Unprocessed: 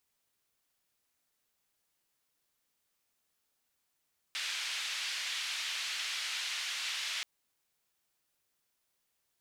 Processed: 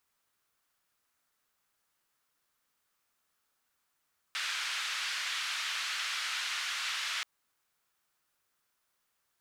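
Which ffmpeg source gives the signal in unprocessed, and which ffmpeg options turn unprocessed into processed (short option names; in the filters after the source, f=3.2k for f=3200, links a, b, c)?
-f lavfi -i "anoisesrc=c=white:d=2.88:r=44100:seed=1,highpass=f=2300,lowpass=f=3500,volume=-20.7dB"
-af "equalizer=f=1.3k:w=1.4:g=8"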